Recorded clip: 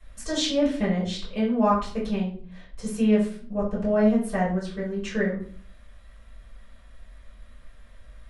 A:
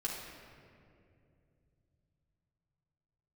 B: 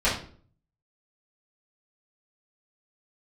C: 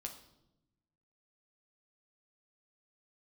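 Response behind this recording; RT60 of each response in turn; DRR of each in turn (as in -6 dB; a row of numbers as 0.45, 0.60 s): B; 2.5, 0.50, 0.90 s; -5.5, -12.5, 2.0 dB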